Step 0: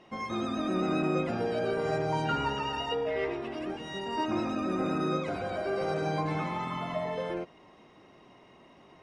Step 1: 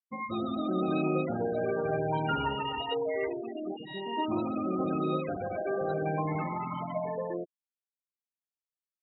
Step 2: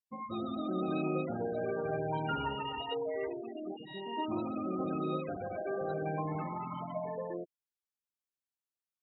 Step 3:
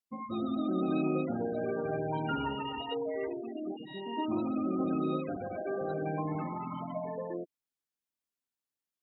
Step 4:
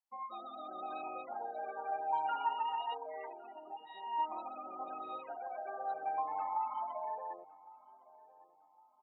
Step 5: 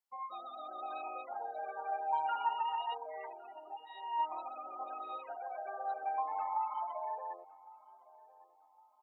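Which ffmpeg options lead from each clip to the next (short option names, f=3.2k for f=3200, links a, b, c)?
-af "afftfilt=real='re*gte(hypot(re,im),0.0355)':imag='im*gte(hypot(re,im),0.0355)':win_size=1024:overlap=0.75"
-af "bandreject=f=2.1k:w=8.7,volume=-4.5dB"
-af "equalizer=f=260:w=2.3:g=7"
-filter_complex "[0:a]highpass=f=840:t=q:w=7,asplit=2[a][b];[b]adelay=1109,lowpass=f=1.1k:p=1,volume=-19dB,asplit=2[c][d];[d]adelay=1109,lowpass=f=1.1k:p=1,volume=0.46,asplit=2[e][f];[f]adelay=1109,lowpass=f=1.1k:p=1,volume=0.46,asplit=2[g][h];[h]adelay=1109,lowpass=f=1.1k:p=1,volume=0.46[i];[a][c][e][g][i]amix=inputs=5:normalize=0,volume=-8.5dB"
-af "highpass=460,volume=1dB"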